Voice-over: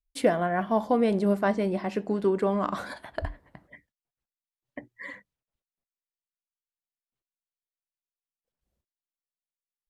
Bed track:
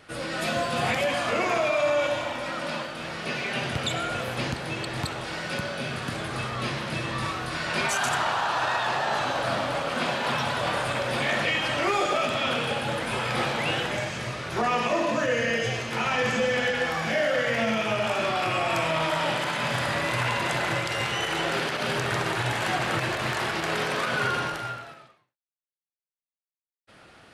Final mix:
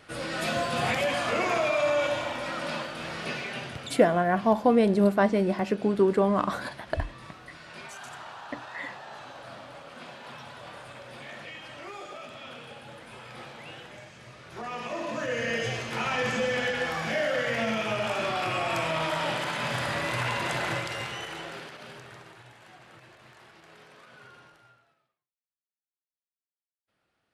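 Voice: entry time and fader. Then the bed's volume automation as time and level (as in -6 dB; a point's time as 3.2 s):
3.75 s, +2.5 dB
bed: 3.23 s -1.5 dB
4.23 s -17 dB
14.16 s -17 dB
15.57 s -3 dB
20.72 s -3 dB
22.55 s -25.5 dB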